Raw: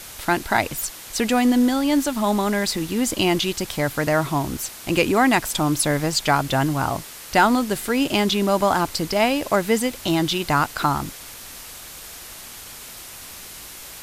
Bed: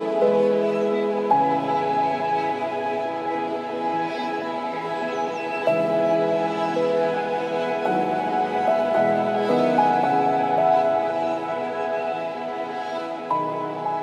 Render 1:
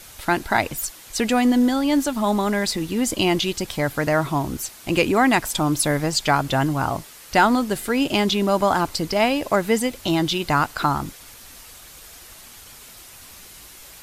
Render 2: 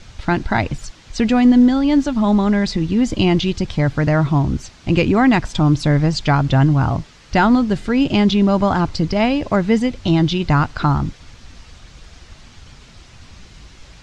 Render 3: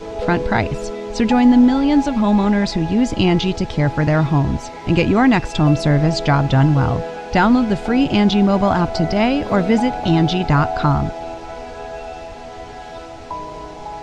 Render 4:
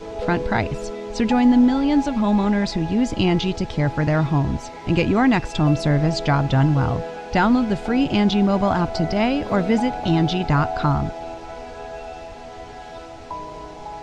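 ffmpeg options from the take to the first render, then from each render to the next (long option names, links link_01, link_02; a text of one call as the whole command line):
ffmpeg -i in.wav -af "afftdn=noise_reduction=6:noise_floor=-39" out.wav
ffmpeg -i in.wav -af "lowpass=frequency=6200:width=0.5412,lowpass=frequency=6200:width=1.3066,bass=frequency=250:gain=13,treble=frequency=4000:gain=-2" out.wav
ffmpeg -i in.wav -i bed.wav -filter_complex "[1:a]volume=-5.5dB[link_01];[0:a][link_01]amix=inputs=2:normalize=0" out.wav
ffmpeg -i in.wav -af "volume=-3.5dB" out.wav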